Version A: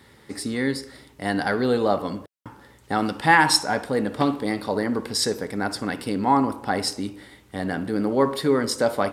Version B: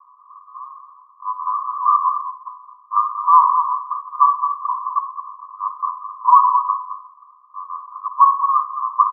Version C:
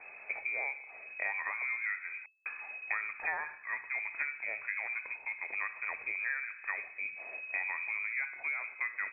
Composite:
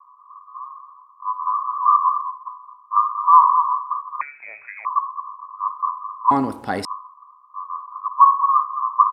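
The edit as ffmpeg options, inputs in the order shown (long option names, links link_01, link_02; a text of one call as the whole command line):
ffmpeg -i take0.wav -i take1.wav -i take2.wav -filter_complex "[1:a]asplit=3[link_01][link_02][link_03];[link_01]atrim=end=4.212[link_04];[2:a]atrim=start=4.208:end=4.852[link_05];[link_02]atrim=start=4.848:end=6.312[link_06];[0:a]atrim=start=6.308:end=6.852[link_07];[link_03]atrim=start=6.848[link_08];[link_04][link_05]acrossfade=duration=0.004:curve1=hsin:curve2=hsin[link_09];[link_09][link_06]acrossfade=duration=0.004:curve1=hsin:curve2=hsin[link_10];[link_10][link_07]acrossfade=duration=0.004:curve1=hsin:curve2=hsin[link_11];[link_11][link_08]acrossfade=duration=0.004:curve1=hsin:curve2=hsin" out.wav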